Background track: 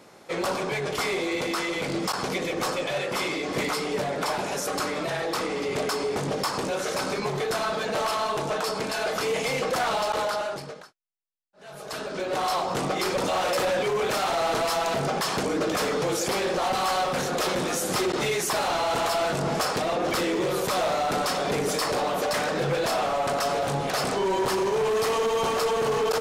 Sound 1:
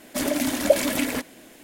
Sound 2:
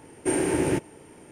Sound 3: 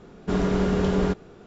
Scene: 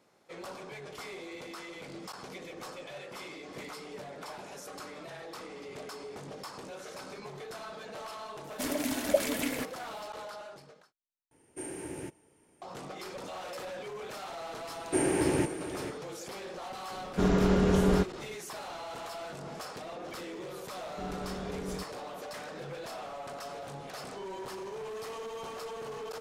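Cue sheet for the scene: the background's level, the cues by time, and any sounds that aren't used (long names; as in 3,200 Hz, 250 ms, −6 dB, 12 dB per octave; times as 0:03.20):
background track −16 dB
0:08.44: mix in 1 −8 dB
0:11.31: overwrite with 2 −17 dB + high-shelf EQ 6,000 Hz +7 dB
0:14.67: mix in 2 −3.5 dB + single-tap delay 455 ms −11.5 dB
0:16.90: mix in 3 −2 dB
0:20.70: mix in 3 −16.5 dB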